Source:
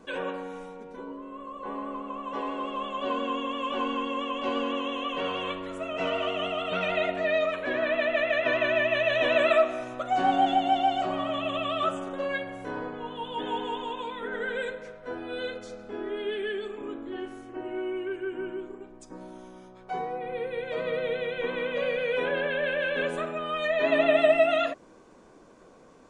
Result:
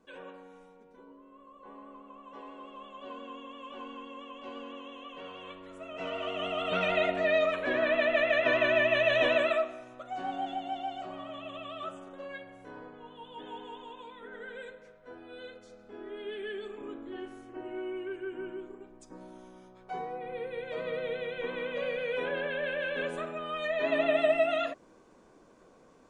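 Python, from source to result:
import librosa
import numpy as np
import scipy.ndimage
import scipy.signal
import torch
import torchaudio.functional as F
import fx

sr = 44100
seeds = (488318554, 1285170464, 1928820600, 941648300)

y = fx.gain(x, sr, db=fx.line((5.37, -14.0), (6.18, -7.0), (6.71, -0.5), (9.23, -0.5), (9.81, -12.0), (15.63, -12.0), (16.72, -5.0)))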